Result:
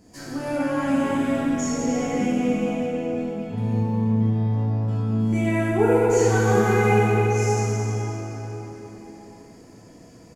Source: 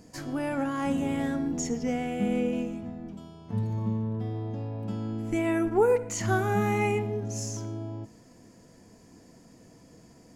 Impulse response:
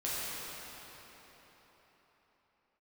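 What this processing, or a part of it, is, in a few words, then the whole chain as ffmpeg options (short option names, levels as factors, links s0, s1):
cave: -filter_complex "[0:a]aecho=1:1:313:0.188[s0];[1:a]atrim=start_sample=2205[s1];[s0][s1]afir=irnorm=-1:irlink=0"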